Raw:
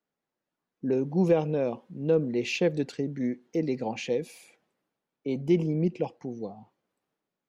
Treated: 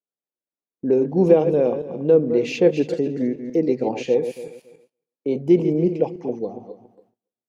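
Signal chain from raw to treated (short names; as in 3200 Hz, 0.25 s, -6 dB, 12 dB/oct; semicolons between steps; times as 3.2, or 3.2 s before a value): regenerating reverse delay 0.14 s, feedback 44%, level -9 dB; bell 440 Hz +9.5 dB 1.9 oct; gate with hold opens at -44 dBFS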